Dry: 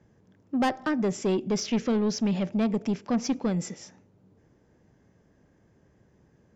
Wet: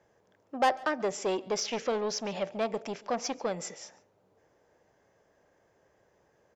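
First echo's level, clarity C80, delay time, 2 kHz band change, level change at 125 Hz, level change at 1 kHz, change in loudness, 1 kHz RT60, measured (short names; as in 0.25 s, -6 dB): -23.0 dB, none, 0.141 s, +0.5 dB, -14.5 dB, +2.5 dB, -4.0 dB, none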